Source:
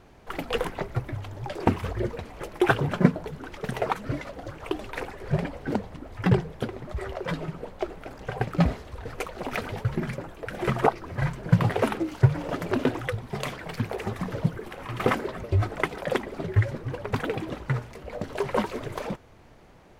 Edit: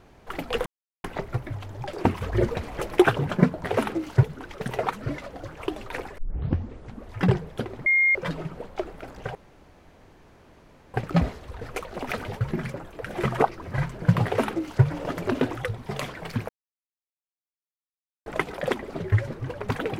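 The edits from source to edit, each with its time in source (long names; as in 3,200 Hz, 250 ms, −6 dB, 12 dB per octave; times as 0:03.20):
0:00.66: splice in silence 0.38 s
0:01.94–0:02.64: clip gain +6 dB
0:05.21: tape start 0.96 s
0:06.89–0:07.18: beep over 2,130 Hz −16.5 dBFS
0:08.38: splice in room tone 1.59 s
0:11.69–0:12.28: duplicate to 0:03.26
0:13.93–0:15.70: silence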